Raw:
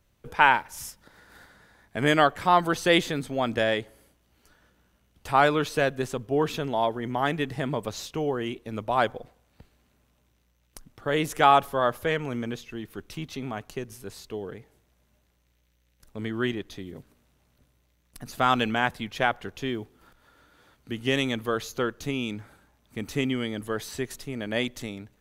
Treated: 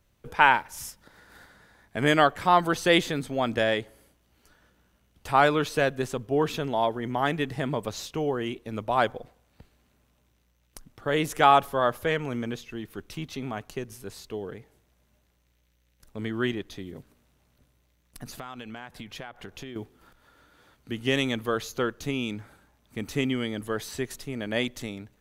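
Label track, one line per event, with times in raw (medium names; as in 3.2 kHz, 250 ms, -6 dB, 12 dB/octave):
18.260000	19.760000	compression 8:1, threshold -36 dBFS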